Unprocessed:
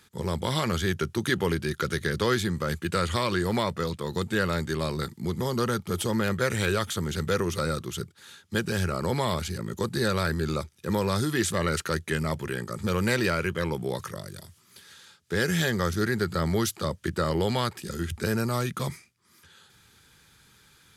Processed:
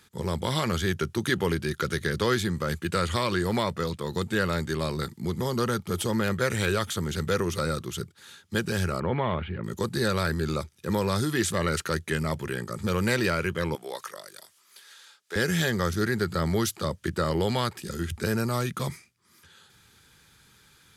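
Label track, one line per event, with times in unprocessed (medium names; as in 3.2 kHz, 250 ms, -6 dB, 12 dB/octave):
9.000000	9.640000	steep low-pass 3.1 kHz 48 dB/octave
13.750000	15.360000	high-pass 580 Hz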